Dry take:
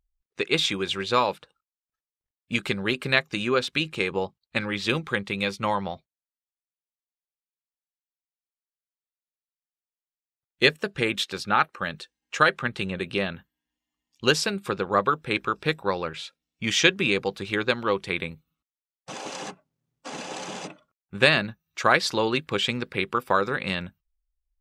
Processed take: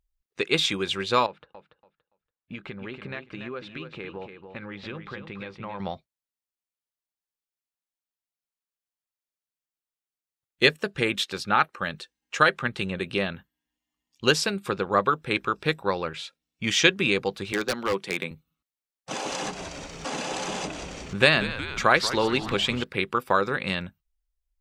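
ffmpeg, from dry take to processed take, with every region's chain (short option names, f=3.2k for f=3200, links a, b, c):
-filter_complex "[0:a]asettb=1/sr,asplit=3[a][b][c];[a]atrim=end=1.264[d];[b]atrim=start=1.26:end=5.8,asetpts=PTS-STARTPTS,afade=t=in:d=0.004:c=qsin,afade=t=out:st=4.536:d=0.004:c=qsin,lowpass=2.3k,acompressor=threshold=-38dB:ratio=2.5:attack=3.2:release=140:knee=1:detection=peak,aecho=1:1:285|570|855:0.398|0.0796|0.0159,atrim=end_sample=200214[e];[c]atrim=start=5.796[f];[d][e]acrossfade=d=0.004:c1=hsin:c2=qsin[g];[g][f]acrossfade=d=0.004:c1=qsin:c2=hsin,asettb=1/sr,asplit=3[h][i][j];[h]atrim=end=17.524[k];[i]atrim=start=17.52:end=18.31,asetpts=PTS-STARTPTS,afade=t=in:d=0.004:c=qsin,afade=t=out:st=0.786:d=0.004:c=qsin,highpass=f=160:w=0.5412,highpass=f=160:w=1.3066,aeval=exprs='0.133*(abs(mod(val(0)/0.133+3,4)-2)-1)':c=same[l];[j]atrim=start=18.306[m];[k][l]acrossfade=d=0.004:c1=hsin:c2=qsin[n];[n][m]acrossfade=d=0.004:c1=qsin:c2=hsin,asettb=1/sr,asplit=3[o][p][q];[o]atrim=end=19.114[r];[p]atrim=start=19.11:end=22.84,asetpts=PTS-STARTPTS,afade=t=in:d=0.004:c=qsin,afade=t=out:st=3.726:d=0.004:c=qsin,asplit=7[s][t][u][v][w][x][y];[t]adelay=182,afreqshift=-120,volume=-14dB[z];[u]adelay=364,afreqshift=-240,volume=-19dB[aa];[v]adelay=546,afreqshift=-360,volume=-24.1dB[ab];[w]adelay=728,afreqshift=-480,volume=-29.1dB[ac];[x]adelay=910,afreqshift=-600,volume=-34.1dB[ad];[y]adelay=1092,afreqshift=-720,volume=-39.2dB[ae];[s][z][aa][ab][ac][ad][ae]amix=inputs=7:normalize=0,atrim=end_sample=164493,acompressor=mode=upward:threshold=-23dB:ratio=2.5:attack=3.2:release=140:knee=2.83:detection=peak[af];[q]atrim=start=22.836[ag];[r][af]acrossfade=d=0.004:c1=hsin:c2=qsin[ah];[ah][ag]acrossfade=d=0.004:c1=qsin:c2=hsin"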